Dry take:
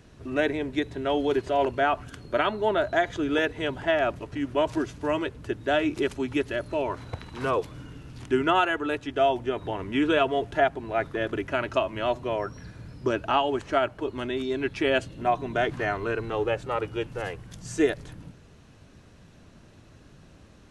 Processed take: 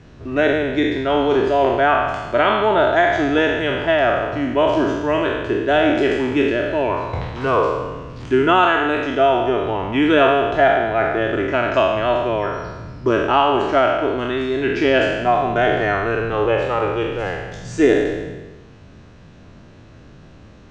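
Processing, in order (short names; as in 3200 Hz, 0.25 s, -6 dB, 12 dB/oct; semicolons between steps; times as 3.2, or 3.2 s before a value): spectral trails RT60 1.25 s; LPF 7500 Hz 24 dB/oct; high shelf 5100 Hz -9.5 dB; gain +6 dB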